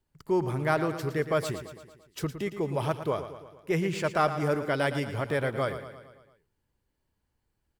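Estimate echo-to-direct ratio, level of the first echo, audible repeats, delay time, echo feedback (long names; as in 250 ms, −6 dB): −9.5 dB, −11.0 dB, 5, 113 ms, 57%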